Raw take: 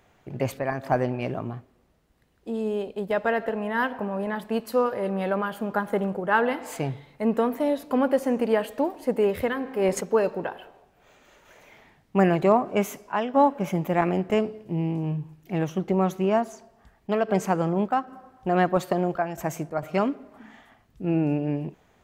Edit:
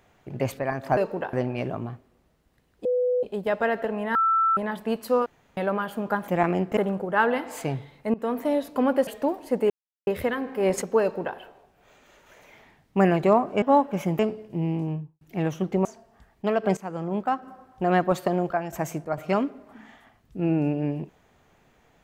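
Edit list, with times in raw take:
0:02.49–0:02.87: beep over 497 Hz −20 dBFS
0:03.79–0:04.21: beep over 1,330 Hz −18 dBFS
0:04.90–0:05.21: fill with room tone
0:07.29–0:07.63: fade in equal-power, from −21 dB
0:08.22–0:08.63: remove
0:09.26: splice in silence 0.37 s
0:10.20–0:10.56: duplicate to 0:00.97
0:12.81–0:13.29: remove
0:13.86–0:14.35: move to 0:05.92
0:14.98–0:15.37: fade out and dull
0:16.01–0:16.50: remove
0:17.42–0:18.03: fade in, from −16.5 dB

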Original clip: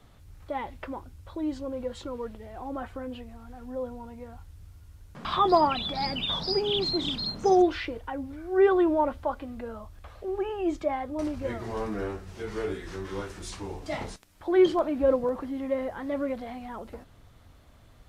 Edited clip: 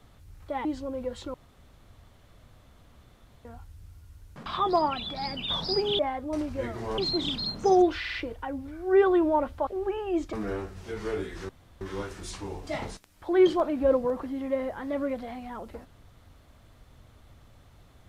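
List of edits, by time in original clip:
0:00.65–0:01.44: remove
0:02.13–0:04.24: fill with room tone
0:05.22–0:06.27: clip gain −3.5 dB
0:07.79: stutter 0.05 s, 4 plays
0:09.32–0:10.19: remove
0:10.85–0:11.84: move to 0:06.78
0:13.00: splice in room tone 0.32 s

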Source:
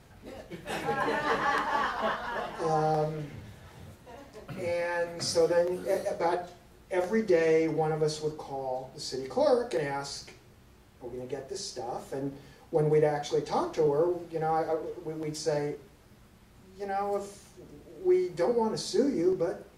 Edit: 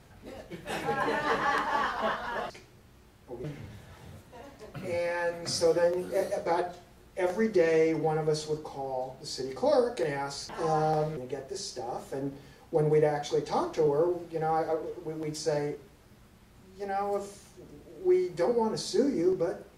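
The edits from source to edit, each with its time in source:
0:02.50–0:03.18: swap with 0:10.23–0:11.17

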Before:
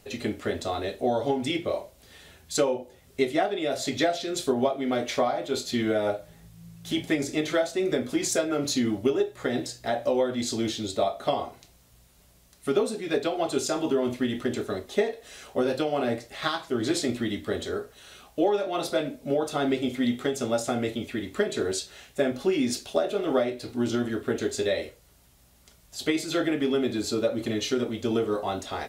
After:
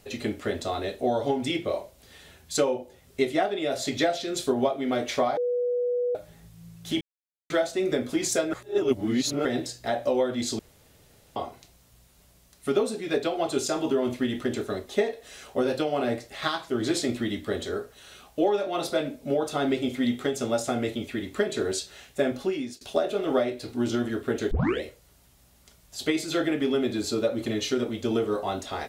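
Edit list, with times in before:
0:05.37–0:06.15: beep over 489 Hz −23 dBFS
0:07.01–0:07.50: silence
0:08.53–0:09.45: reverse
0:10.59–0:11.36: fill with room tone
0:22.34–0:22.81: fade out, to −24 dB
0:24.51: tape start 0.31 s

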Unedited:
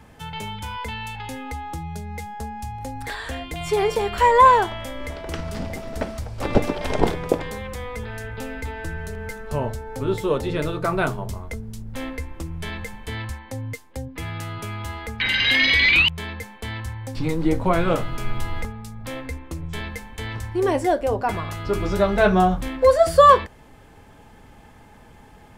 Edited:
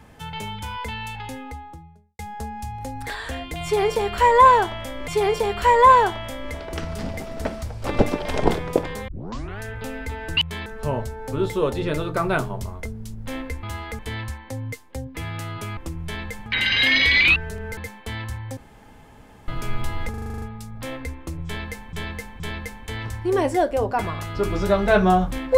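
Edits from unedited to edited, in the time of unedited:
0:01.12–0:02.19: fade out and dull
0:03.64–0:05.08: repeat, 2 plays
0:07.64: tape start 0.52 s
0:08.93–0:09.34: swap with 0:16.04–0:16.33
0:12.31–0:13.00: swap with 0:14.78–0:15.14
0:17.13–0:18.04: fill with room tone
0:18.66: stutter 0.04 s, 9 plays
0:19.70–0:20.17: repeat, 3 plays

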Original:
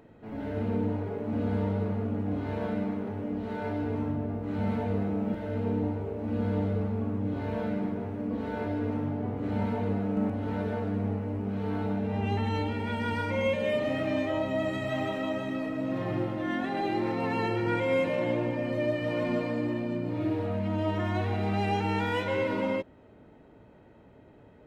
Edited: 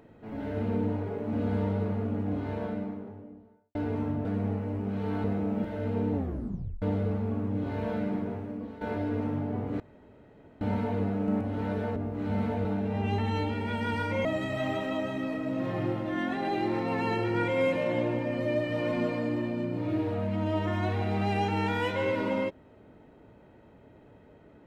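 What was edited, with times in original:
0:02.21–0:03.75: fade out and dull
0:04.25–0:04.94: swap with 0:10.85–0:11.84
0:05.84: tape stop 0.68 s
0:08.00–0:08.51: fade out, to −13.5 dB
0:09.50: splice in room tone 0.81 s
0:13.44–0:14.57: remove

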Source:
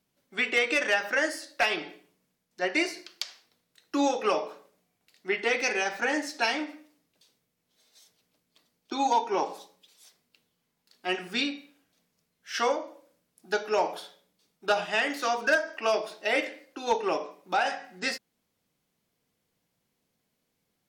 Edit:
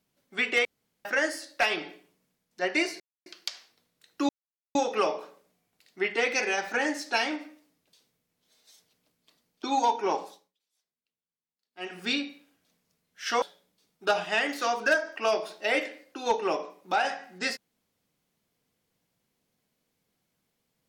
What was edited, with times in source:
0:00.65–0:01.05: fill with room tone
0:03.00: splice in silence 0.26 s
0:04.03: splice in silence 0.46 s
0:09.46–0:11.35: duck −24 dB, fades 0.35 s
0:12.70–0:14.03: remove

